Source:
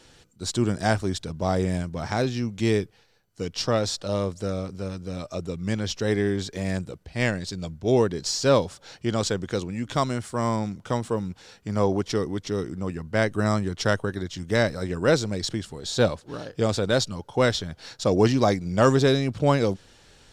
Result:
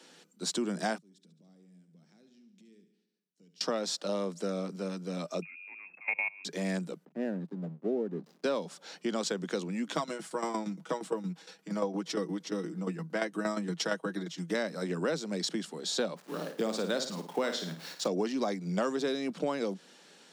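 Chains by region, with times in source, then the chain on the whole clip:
0.98–3.61 s: amplifier tone stack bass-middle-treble 10-0-1 + compression 5:1, threshold -51 dBFS + feedback delay 71 ms, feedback 59%, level -11 dB
5.42–6.45 s: level held to a coarse grid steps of 23 dB + frequency inversion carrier 2.6 kHz
7.05–8.44 s: boxcar filter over 40 samples + hysteresis with a dead band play -42 dBFS
9.96–14.54 s: comb 6.2 ms, depth 69% + tremolo saw down 8.6 Hz, depth 75%
16.16–18.08 s: send-on-delta sampling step -44 dBFS + flutter echo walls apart 9.3 m, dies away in 0.37 s
whole clip: steep high-pass 160 Hz 96 dB/octave; compression 6:1, threshold -26 dBFS; trim -2 dB

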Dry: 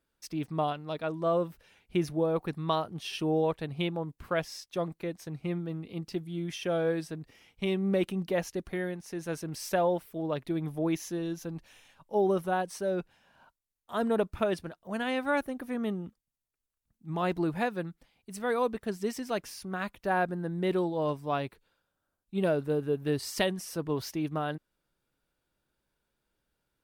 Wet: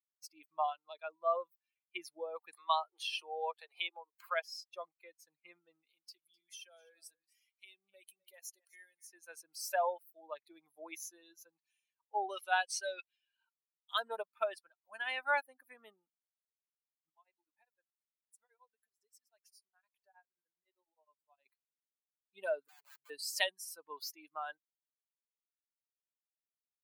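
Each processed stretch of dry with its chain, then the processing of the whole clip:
2.53–4.46 s: steep high-pass 330 Hz 96 dB/octave + upward compressor, threshold -31 dBFS
5.86–9.07 s: treble shelf 3.8 kHz +11.5 dB + compression 2:1, threshold -46 dBFS + delay 255 ms -12.5 dB
12.29–14.00 s: de-esser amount 90% + frequency weighting D
17.09–21.46 s: dynamic bell 1.2 kHz, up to -7 dB, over -52 dBFS, Q 6.8 + compression 3:1, threshold -47 dBFS + tremolo of two beating tones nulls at 9.7 Hz
22.68–23.10 s: compression 5:1, threshold -34 dBFS + rippled Chebyshev low-pass 580 Hz, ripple 9 dB + integer overflow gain 39.5 dB
whole clip: expander on every frequency bin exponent 2; high-pass 690 Hz 24 dB/octave; trim +2.5 dB

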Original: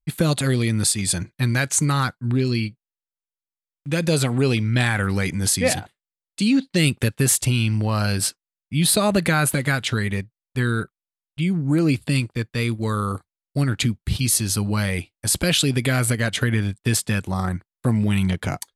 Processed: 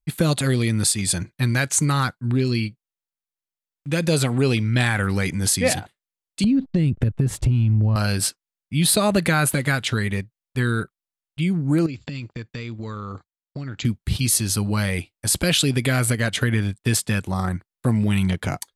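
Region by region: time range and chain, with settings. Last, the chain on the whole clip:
6.44–7.96 s: hysteresis with a dead band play -45 dBFS + tilt EQ -4.5 dB/octave + compression, threshold -16 dBFS
11.86–13.85 s: gate -50 dBFS, range -13 dB + compression 10:1, threshold -27 dBFS + brick-wall FIR low-pass 7.7 kHz
whole clip: none

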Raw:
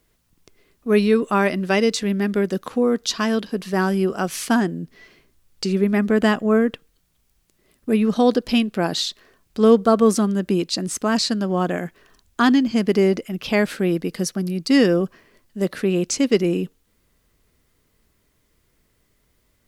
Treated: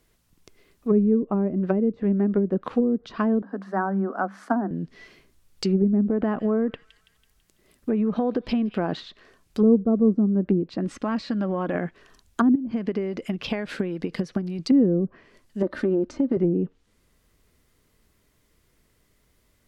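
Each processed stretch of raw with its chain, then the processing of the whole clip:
3.42–4.71 s: rippled Chebyshev high-pass 190 Hz, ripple 9 dB + resonant high shelf 2 kHz -9 dB, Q 3
6.01–9.00 s: compression 16:1, threshold -18 dBFS + feedback echo behind a high-pass 165 ms, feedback 52%, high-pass 2.4 kHz, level -16 dB
10.84–11.75 s: comb 3.6 ms, depth 40% + compression, threshold -21 dBFS
12.55–14.59 s: band-stop 1.3 kHz, Q 22 + compression 4:1, threshold -28 dBFS + transient shaper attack +9 dB, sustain +2 dB
15.62–16.37 s: peaking EQ 2.5 kHz -9 dB 0.64 oct + comb 3.3 ms, depth 68% + compression 12:1, threshold -17 dBFS
whole clip: low-pass that closes with the level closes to 320 Hz, closed at -15.5 dBFS; dynamic bell 6.1 kHz, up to -4 dB, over -51 dBFS, Q 0.78

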